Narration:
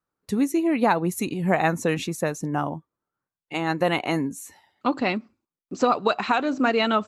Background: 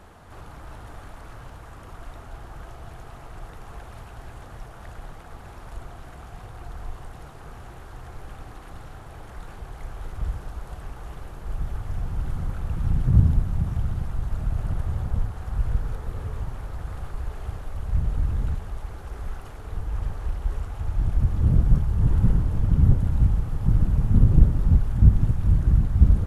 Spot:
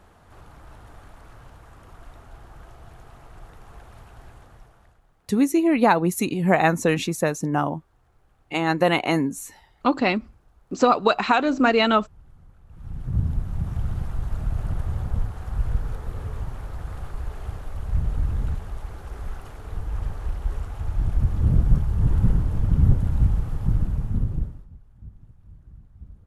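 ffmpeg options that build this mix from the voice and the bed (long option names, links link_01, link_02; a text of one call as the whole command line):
ffmpeg -i stem1.wav -i stem2.wav -filter_complex "[0:a]adelay=5000,volume=3dB[link_01];[1:a]volume=17.5dB,afade=type=out:start_time=4.24:duration=0.77:silence=0.133352,afade=type=in:start_time=12.67:duration=1.28:silence=0.0749894,afade=type=out:start_time=23.5:duration=1.17:silence=0.0398107[link_02];[link_01][link_02]amix=inputs=2:normalize=0" out.wav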